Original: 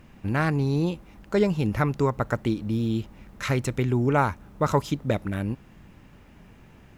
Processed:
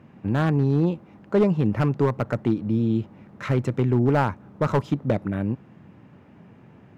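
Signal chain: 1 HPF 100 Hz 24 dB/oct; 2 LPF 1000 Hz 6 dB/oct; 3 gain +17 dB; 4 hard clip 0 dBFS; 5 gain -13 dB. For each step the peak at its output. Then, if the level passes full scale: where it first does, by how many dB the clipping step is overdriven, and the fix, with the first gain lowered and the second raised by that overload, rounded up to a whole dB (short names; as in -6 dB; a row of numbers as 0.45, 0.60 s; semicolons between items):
-6.0, -7.5, +9.5, 0.0, -13.0 dBFS; step 3, 9.5 dB; step 3 +7 dB, step 5 -3 dB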